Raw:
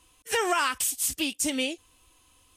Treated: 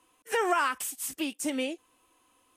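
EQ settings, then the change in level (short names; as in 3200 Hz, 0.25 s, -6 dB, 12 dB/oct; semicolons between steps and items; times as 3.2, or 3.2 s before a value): three-band isolator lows -20 dB, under 180 Hz, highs -15 dB, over 2100 Hz; high shelf 5600 Hz +9.5 dB; 0.0 dB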